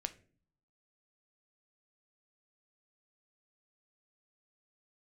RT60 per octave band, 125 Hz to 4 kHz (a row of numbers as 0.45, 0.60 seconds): 0.90, 0.80, 0.50, 0.35, 0.35, 0.30 seconds